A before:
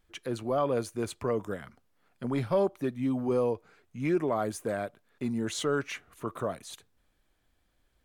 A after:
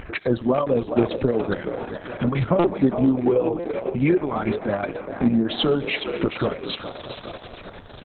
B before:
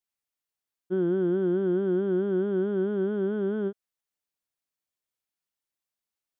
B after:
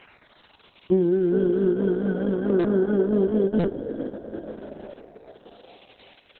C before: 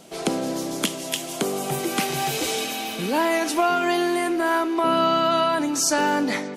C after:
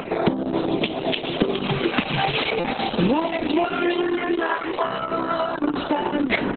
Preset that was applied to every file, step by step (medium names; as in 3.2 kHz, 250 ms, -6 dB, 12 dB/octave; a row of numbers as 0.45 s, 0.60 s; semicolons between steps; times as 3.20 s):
high-pass 40 Hz 6 dB/octave; resonant high shelf 4.1 kHz -9.5 dB, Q 1.5; compression 8:1, threshold -27 dBFS; band-stop 1.9 kHz, Q 23; reverb removal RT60 0.89 s; Schroeder reverb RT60 2.2 s, combs from 29 ms, DRR 15 dB; LFO notch saw down 0.4 Hz 270–3700 Hz; dynamic bell 210 Hz, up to +4 dB, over -46 dBFS, Q 0.91; upward compressor, threshold -33 dBFS; frequency-shifting echo 415 ms, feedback 53%, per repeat +60 Hz, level -9.5 dB; buffer glitch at 2.59/3.59 s, samples 256, times 8; Opus 6 kbps 48 kHz; normalise loudness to -23 LUFS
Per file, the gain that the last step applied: +13.0 dB, +10.0 dB, +10.5 dB